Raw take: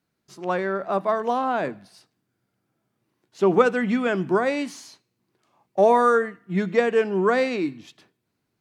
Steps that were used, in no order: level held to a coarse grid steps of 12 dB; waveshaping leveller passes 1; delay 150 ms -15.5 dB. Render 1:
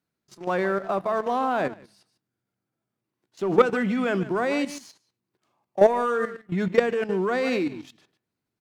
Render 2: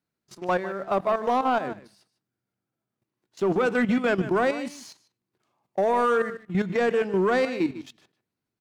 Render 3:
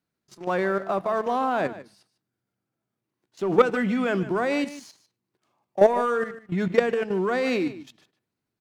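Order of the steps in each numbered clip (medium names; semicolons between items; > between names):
delay > waveshaping leveller > level held to a coarse grid; level held to a coarse grid > delay > waveshaping leveller; waveshaping leveller > level held to a coarse grid > delay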